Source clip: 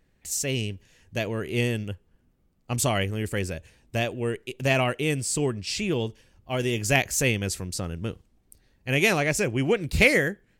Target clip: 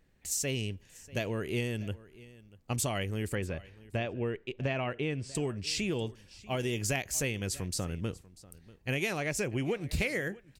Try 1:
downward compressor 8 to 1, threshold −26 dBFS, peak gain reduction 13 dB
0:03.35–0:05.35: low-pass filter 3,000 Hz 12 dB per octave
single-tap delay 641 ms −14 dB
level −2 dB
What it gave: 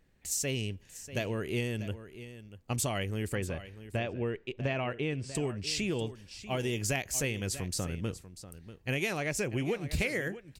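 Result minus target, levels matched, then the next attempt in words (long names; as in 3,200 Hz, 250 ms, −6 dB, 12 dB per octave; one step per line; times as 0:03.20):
echo-to-direct +6.5 dB
downward compressor 8 to 1, threshold −26 dBFS, peak gain reduction 13 dB
0:03.35–0:05.35: low-pass filter 3,000 Hz 12 dB per octave
single-tap delay 641 ms −20.5 dB
level −2 dB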